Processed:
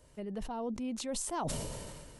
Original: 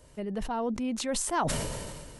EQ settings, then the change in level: dynamic bell 1.7 kHz, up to -8 dB, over -47 dBFS, Q 1.2; -5.5 dB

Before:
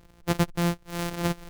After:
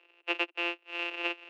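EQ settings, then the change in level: steep high-pass 320 Hz 96 dB/octave; resonant low-pass 2.7 kHz, resonance Q 15; -8.0 dB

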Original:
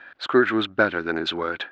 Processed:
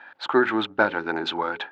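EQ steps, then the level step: high-pass 110 Hz 12 dB/octave; peaking EQ 870 Hz +14 dB 0.32 oct; hum notches 60/120/180/240/300/360/420/480/540 Hz; -2.0 dB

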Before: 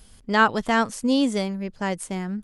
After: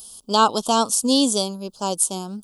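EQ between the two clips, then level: Chebyshev band-stop 1.1–3.4 kHz, order 2; RIAA curve recording; dynamic bell 270 Hz, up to +4 dB, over -39 dBFS, Q 1.2; +4.5 dB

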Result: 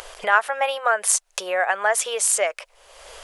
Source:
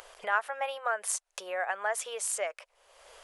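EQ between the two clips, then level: tilt EQ -2 dB/octave; treble shelf 2.3 kHz +11 dB; +8.5 dB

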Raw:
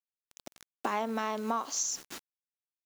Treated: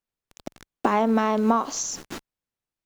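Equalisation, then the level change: tilt EQ -2.5 dB/octave; +9.0 dB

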